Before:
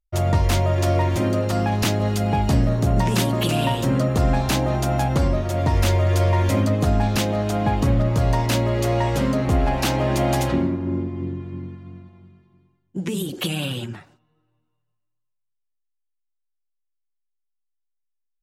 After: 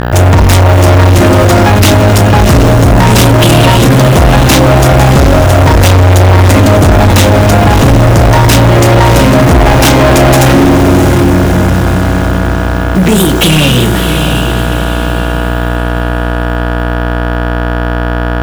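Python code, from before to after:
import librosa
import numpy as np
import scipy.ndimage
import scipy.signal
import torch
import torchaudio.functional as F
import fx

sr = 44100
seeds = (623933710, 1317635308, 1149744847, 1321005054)

y = fx.quant_dither(x, sr, seeds[0], bits=8, dither='none')
y = fx.dmg_buzz(y, sr, base_hz=60.0, harmonics=29, level_db=-35.0, tilt_db=-3, odd_only=False)
y = fx.notch(y, sr, hz=4400.0, q=12.0)
y = fx.doubler(y, sr, ms=32.0, db=-10.5)
y = fx.echo_diffused(y, sr, ms=673, feedback_pct=43, wet_db=-9.0)
y = fx.leveller(y, sr, passes=5)
y = y * librosa.db_to_amplitude(4.5)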